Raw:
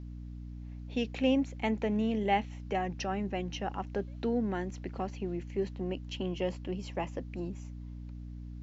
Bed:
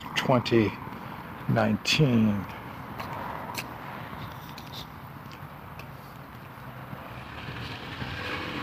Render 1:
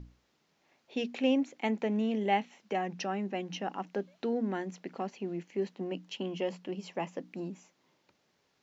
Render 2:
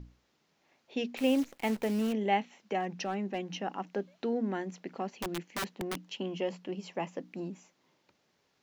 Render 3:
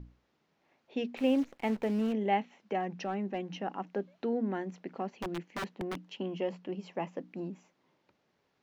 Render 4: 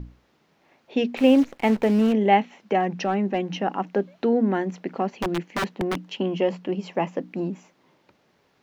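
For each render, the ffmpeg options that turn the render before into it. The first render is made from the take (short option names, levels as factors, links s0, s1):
-af "bandreject=f=60:t=h:w=6,bandreject=f=120:t=h:w=6,bandreject=f=180:t=h:w=6,bandreject=f=240:t=h:w=6,bandreject=f=300:t=h:w=6"
-filter_complex "[0:a]asettb=1/sr,asplit=3[s0][s1][s2];[s0]atrim=end=1.174[s3];[s1]atrim=start=1.17:end=2.13,asetpts=PTS-STARTPTS,afade=t=in:d=0.004:c=qsin,afade=t=out:st=0.956:d=0.004:c=qsin,acrusher=bits=8:dc=4:mix=0:aa=0.000001[s4];[s2]atrim=start=2.126[s5];[s3][s4]acrossfade=d=0.004:c1=hsin:c2=qsin[s6];[s6][s5]acrossfade=d=0.004:c1=qsin:c2=hsin,asettb=1/sr,asplit=3[s7][s8][s9];[s7]atrim=end=2.804[s10];[s8]atrim=start=2.8:end=3.47,asetpts=PTS-STARTPTS,afade=t=in:d=0.004:c=qsin,afade=t=out:st=0.666:d=0.004:c=qsin,asoftclip=type=hard:threshold=0.0501[s11];[s9]atrim=start=3.466[s12];[s10][s11]acrossfade=d=0.004:c1=hsin:c2=qsin[s13];[s13][s12]acrossfade=d=0.004:c1=qsin:c2=hsin,asettb=1/sr,asplit=3[s14][s15][s16];[s14]atrim=end=5.174[s17];[s15]atrim=start=5.17:end=5.98,asetpts=PTS-STARTPTS,afade=t=in:d=0.004:c=qsin,afade=t=out:st=0.806:d=0.004:c=qsin,aeval=exprs='(mod(28.2*val(0)+1,2)-1)/28.2':c=same[s18];[s16]atrim=start=5.976[s19];[s17][s18]acrossfade=d=0.004:c1=hsin:c2=qsin[s20];[s20][s19]acrossfade=d=0.004:c1=qsin:c2=hsin"
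-af "lowpass=f=2200:p=1"
-af "volume=3.55"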